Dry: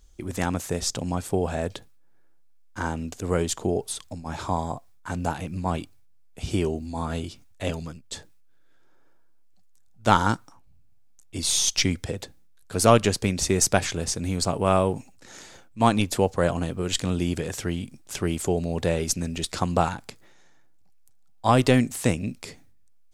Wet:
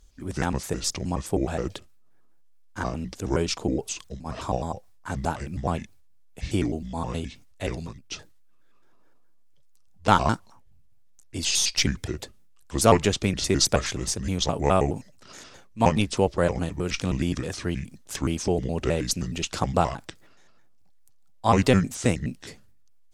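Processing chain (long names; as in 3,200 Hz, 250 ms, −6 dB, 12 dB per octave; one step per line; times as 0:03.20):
pitch shifter gated in a rhythm −5 semitones, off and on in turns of 105 ms
AC-3 96 kbit/s 48,000 Hz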